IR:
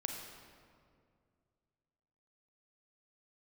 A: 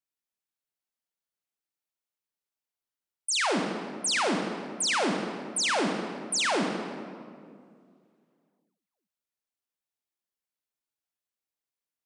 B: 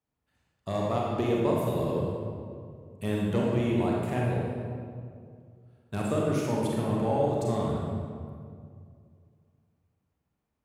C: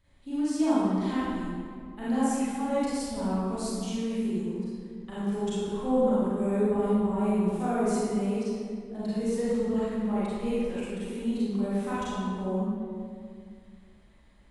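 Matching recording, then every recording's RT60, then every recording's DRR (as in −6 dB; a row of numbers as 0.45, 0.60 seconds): A; 2.2, 2.2, 2.2 seconds; 2.0, −4.0, −10.5 decibels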